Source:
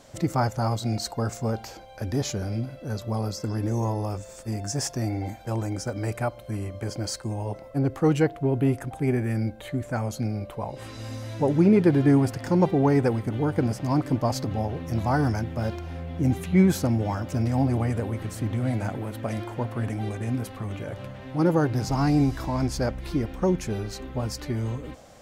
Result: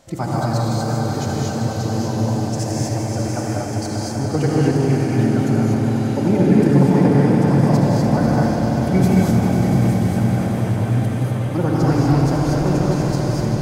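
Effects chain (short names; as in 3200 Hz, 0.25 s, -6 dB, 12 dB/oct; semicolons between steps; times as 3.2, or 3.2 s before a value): time stretch by phase-locked vocoder 0.54×; swelling echo 98 ms, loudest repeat 5, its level -10 dB; non-linear reverb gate 0.27 s rising, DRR -3 dB; warbling echo 81 ms, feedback 65%, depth 174 cents, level -10.5 dB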